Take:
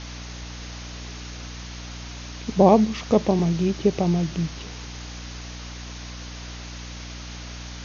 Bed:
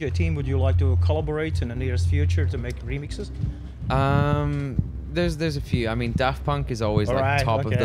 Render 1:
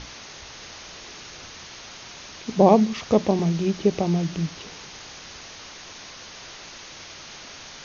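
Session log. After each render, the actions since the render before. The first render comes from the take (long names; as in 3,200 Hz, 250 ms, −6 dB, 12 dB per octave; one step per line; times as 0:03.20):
mains-hum notches 60/120/180/240/300 Hz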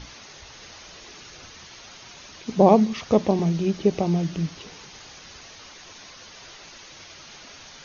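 broadband denoise 6 dB, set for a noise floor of −42 dBFS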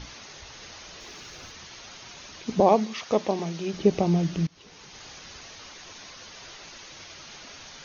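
0:01.00–0:01.52: converter with a step at zero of −59 dBFS
0:02.60–0:03.73: high-pass filter 570 Hz 6 dB per octave
0:04.47–0:05.07: fade in, from −21.5 dB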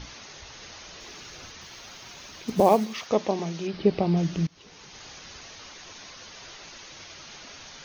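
0:01.61–0:03.07: log-companded quantiser 6 bits
0:03.67–0:04.17: Chebyshev low-pass filter 4,900 Hz, order 4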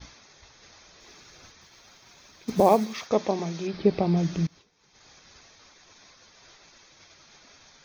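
notch filter 2,900 Hz, Q 7.6
downward expander −37 dBFS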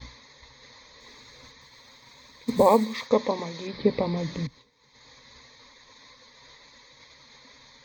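EQ curve with evenly spaced ripples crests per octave 1, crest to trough 13 dB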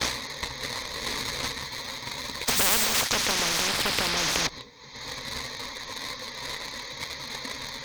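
leveller curve on the samples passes 2
every bin compressed towards the loudest bin 10 to 1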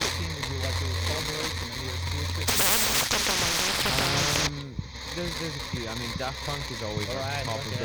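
mix in bed −10.5 dB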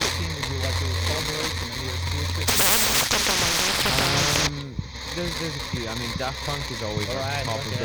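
level +3.5 dB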